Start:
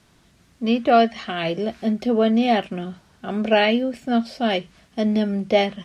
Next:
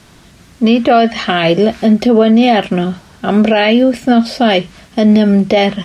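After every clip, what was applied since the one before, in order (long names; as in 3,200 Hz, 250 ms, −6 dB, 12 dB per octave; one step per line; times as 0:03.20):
boost into a limiter +15.5 dB
level −1 dB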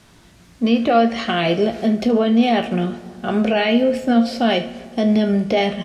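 tuned comb filter 58 Hz, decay 0.25 s, harmonics all, mix 70%
single-tap delay 75 ms −17 dB
convolution reverb RT60 2.1 s, pre-delay 80 ms, DRR 17 dB
level −2.5 dB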